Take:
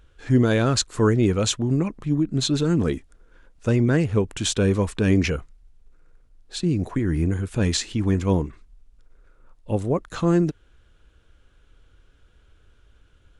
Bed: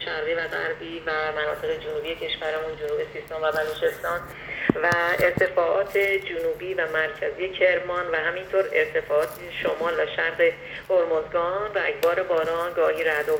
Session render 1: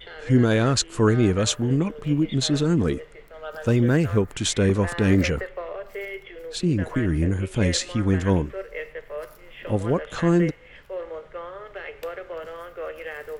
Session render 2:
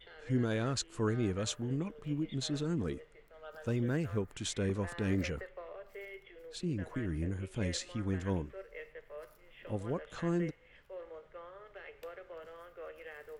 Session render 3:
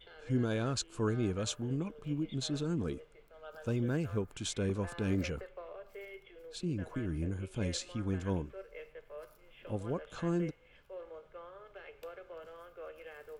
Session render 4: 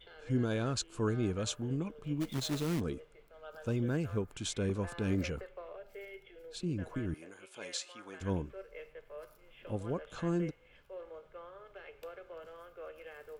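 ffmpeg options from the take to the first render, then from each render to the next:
ffmpeg -i in.wav -i bed.wav -filter_complex "[1:a]volume=-12dB[link_01];[0:a][link_01]amix=inputs=2:normalize=0" out.wav
ffmpeg -i in.wav -af "volume=-13.5dB" out.wav
ffmpeg -i in.wav -af "bandreject=frequency=1900:width=5.7" out.wav
ffmpeg -i in.wav -filter_complex "[0:a]asplit=3[link_01][link_02][link_03];[link_01]afade=type=out:start_time=2.2:duration=0.02[link_04];[link_02]acrusher=bits=2:mode=log:mix=0:aa=0.000001,afade=type=in:start_time=2.2:duration=0.02,afade=type=out:start_time=2.79:duration=0.02[link_05];[link_03]afade=type=in:start_time=2.79:duration=0.02[link_06];[link_04][link_05][link_06]amix=inputs=3:normalize=0,asettb=1/sr,asplit=3[link_07][link_08][link_09];[link_07]atrim=end=5.774[link_10];[link_08]atrim=start=5.77:end=6.54,asetpts=PTS-STARTPTS,afade=type=in:duration=0.004:curve=qsin,afade=type=out:start_time=0.766:duration=0.004:curve=qsin,asuperstop=centerf=1100:order=12:qfactor=4.8[link_11];[link_09]atrim=start=6.536[link_12];[link_10][link_11]acrossfade=duration=0.004:curve1=hsin:curve2=qsin[link_13];[link_13][link_12]acrossfade=duration=0.004:curve1=qsin:curve2=hsin,asettb=1/sr,asplit=3[link_14][link_15][link_16];[link_14]atrim=end=7.144[link_17];[link_15]atrim=start=7.14:end=8.21,asetpts=PTS-STARTPTS,afade=type=in:duration=0.004:curve=qsin,afade=type=out:start_time=1.066:duration=0.004:curve=qsin,highpass=660[link_18];[link_16]atrim=start=8.206[link_19];[link_17][link_18]acrossfade=duration=0.004:curve1=hsin:curve2=qsin[link_20];[link_20][link_19]acrossfade=duration=0.004:curve1=qsin:curve2=hsin" out.wav

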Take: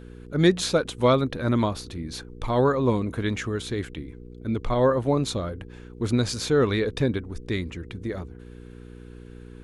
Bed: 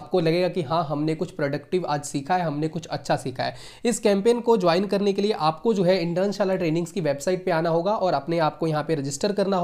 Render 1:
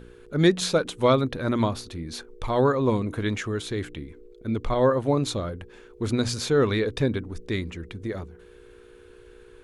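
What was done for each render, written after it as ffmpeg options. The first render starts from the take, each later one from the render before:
ffmpeg -i in.wav -af "bandreject=frequency=60:width_type=h:width=4,bandreject=frequency=120:width_type=h:width=4,bandreject=frequency=180:width_type=h:width=4,bandreject=frequency=240:width_type=h:width=4,bandreject=frequency=300:width_type=h:width=4" out.wav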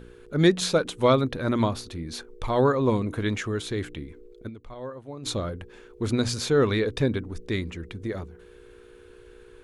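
ffmpeg -i in.wav -filter_complex "[0:a]asplit=3[link_01][link_02][link_03];[link_01]atrim=end=4.6,asetpts=PTS-STARTPTS,afade=type=out:start_time=4.47:duration=0.13:curve=exp:silence=0.149624[link_04];[link_02]atrim=start=4.6:end=5.13,asetpts=PTS-STARTPTS,volume=-16.5dB[link_05];[link_03]atrim=start=5.13,asetpts=PTS-STARTPTS,afade=type=in:duration=0.13:curve=exp:silence=0.149624[link_06];[link_04][link_05][link_06]concat=n=3:v=0:a=1" out.wav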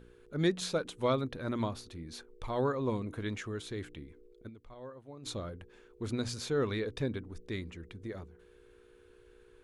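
ffmpeg -i in.wav -af "volume=-10dB" out.wav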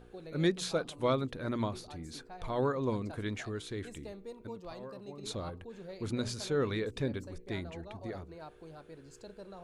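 ffmpeg -i in.wav -i bed.wav -filter_complex "[1:a]volume=-26.5dB[link_01];[0:a][link_01]amix=inputs=2:normalize=0" out.wav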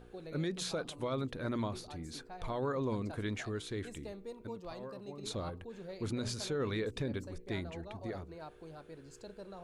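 ffmpeg -i in.wav -af "alimiter=level_in=3dB:limit=-24dB:level=0:latency=1:release=43,volume=-3dB" out.wav

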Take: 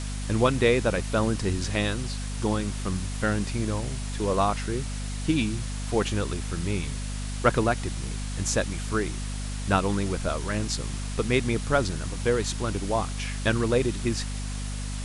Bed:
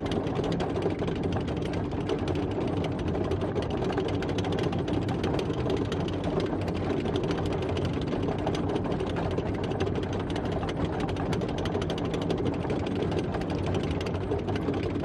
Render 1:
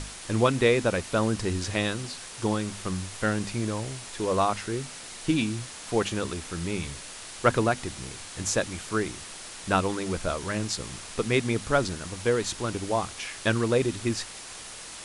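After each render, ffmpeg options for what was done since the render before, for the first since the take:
ffmpeg -i in.wav -af "bandreject=frequency=50:width_type=h:width=6,bandreject=frequency=100:width_type=h:width=6,bandreject=frequency=150:width_type=h:width=6,bandreject=frequency=200:width_type=h:width=6,bandreject=frequency=250:width_type=h:width=6" out.wav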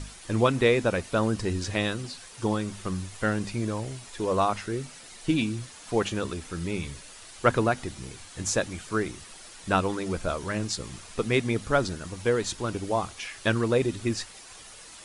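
ffmpeg -i in.wav -af "afftdn=noise_reduction=8:noise_floor=-42" out.wav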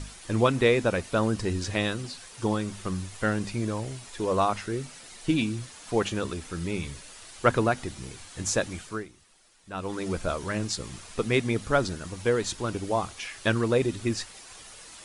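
ffmpeg -i in.wav -filter_complex "[0:a]asplit=3[link_01][link_02][link_03];[link_01]atrim=end=9.08,asetpts=PTS-STARTPTS,afade=type=out:start_time=8.77:duration=0.31:silence=0.177828[link_04];[link_02]atrim=start=9.08:end=9.73,asetpts=PTS-STARTPTS,volume=-15dB[link_05];[link_03]atrim=start=9.73,asetpts=PTS-STARTPTS,afade=type=in:duration=0.31:silence=0.177828[link_06];[link_04][link_05][link_06]concat=n=3:v=0:a=1" out.wav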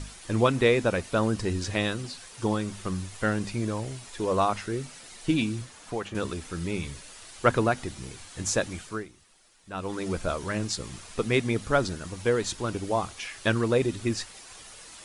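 ffmpeg -i in.wav -filter_complex "[0:a]asettb=1/sr,asplit=3[link_01][link_02][link_03];[link_01]atrim=end=5.614[link_04];[link_02]atrim=start=5.61:end=6.15,asetpts=PTS-STARTPTS,afade=type=in:duration=0.004:curve=qsin,afade=type=out:start_time=0.536:duration=0.004:curve=qsin,acrossover=split=580|2100[link_05][link_06][link_07];[link_05]acompressor=threshold=-34dB:ratio=4[link_08];[link_06]acompressor=threshold=-34dB:ratio=4[link_09];[link_07]acompressor=threshold=-49dB:ratio=4[link_10];[link_08][link_09][link_10]amix=inputs=3:normalize=0[link_11];[link_03]atrim=start=6.146[link_12];[link_04][link_11]acrossfade=duration=0.004:curve1=hsin:curve2=qsin[link_13];[link_13][link_12]acrossfade=duration=0.004:curve1=qsin:curve2=hsin" out.wav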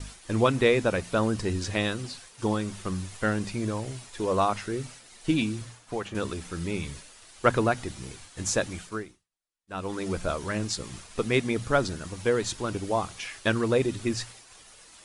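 ffmpeg -i in.wav -af "bandreject=frequency=58.75:width_type=h:width=4,bandreject=frequency=117.5:width_type=h:width=4,bandreject=frequency=176.25:width_type=h:width=4,agate=range=-33dB:threshold=-41dB:ratio=3:detection=peak" out.wav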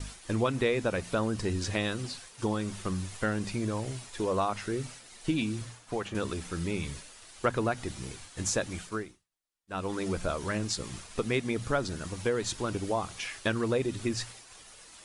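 ffmpeg -i in.wav -af "acompressor=threshold=-28dB:ratio=2" out.wav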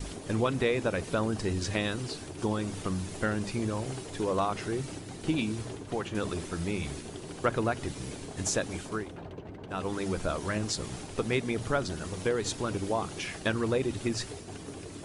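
ffmpeg -i in.wav -i bed.wav -filter_complex "[1:a]volume=-14dB[link_01];[0:a][link_01]amix=inputs=2:normalize=0" out.wav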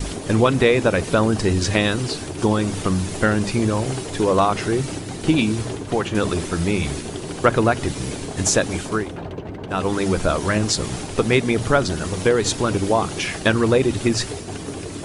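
ffmpeg -i in.wav -af "volume=11.5dB" out.wav

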